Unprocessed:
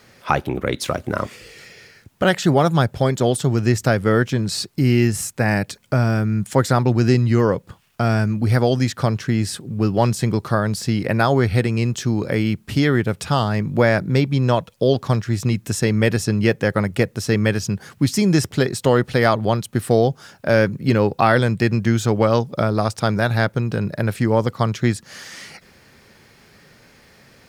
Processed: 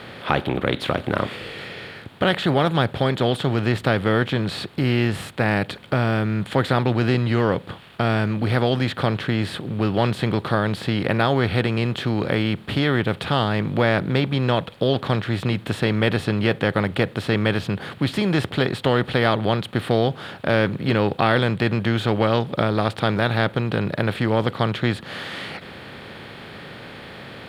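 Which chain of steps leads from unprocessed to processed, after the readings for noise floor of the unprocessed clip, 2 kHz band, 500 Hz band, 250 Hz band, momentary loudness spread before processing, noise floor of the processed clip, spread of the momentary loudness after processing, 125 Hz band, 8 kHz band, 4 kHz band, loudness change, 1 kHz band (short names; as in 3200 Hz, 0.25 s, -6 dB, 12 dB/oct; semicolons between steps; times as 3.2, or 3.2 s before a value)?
-53 dBFS, 0.0 dB, -2.5 dB, -2.5 dB, 6 LU, -41 dBFS, 11 LU, -3.5 dB, -14.5 dB, +2.0 dB, -2.5 dB, -1.5 dB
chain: per-bin compression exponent 0.6; resonant high shelf 4600 Hz -9 dB, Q 3; gain -6.5 dB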